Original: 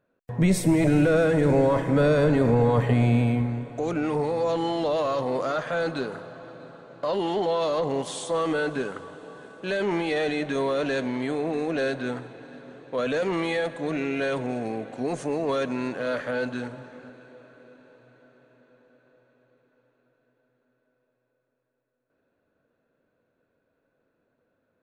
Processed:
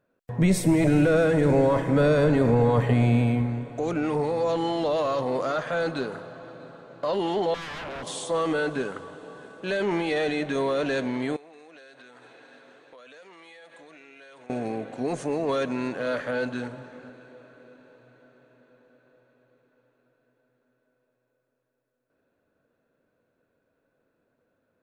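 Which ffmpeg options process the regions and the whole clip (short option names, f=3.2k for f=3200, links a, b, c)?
-filter_complex "[0:a]asettb=1/sr,asplit=3[a][b][c];[a]atrim=end=7.544[d];[b]atrim=start=7.54:end=8.07,asetpts=PTS-STARTPTS,afade=t=in:d=0.004:c=qsin,afade=t=out:st=0.526:d=0.004:c=qsin,aeval=exprs='0.0299*(abs(mod(val(0)/0.0299+3,4)-2)-1)':c=same,aemphasis=mode=reproduction:type=50fm[e];[c]atrim=start=8.066[f];[d][e]acrossfade=d=0.004:c1=hsin:c2=qsin[g];[g][f]acrossfade=d=0.004:c1=qsin:c2=hsin,asettb=1/sr,asplit=3[h][i][j];[h]atrim=end=11.364[k];[i]atrim=start=11.36:end=14.5,asetpts=PTS-STARTPTS,afade=t=in:d=0.004:c=qsin,afade=t=out:st=3.136:d=0.004:c=qsin,highpass=f=1.2k:p=1,acompressor=threshold=-45dB:ratio=16:attack=3.2:release=140:knee=1:detection=peak[l];[j]atrim=start=14.496[m];[k][l]acrossfade=d=0.004:c1=hsin:c2=qsin[n];[n][m]acrossfade=d=0.004:c1=qsin:c2=hsin"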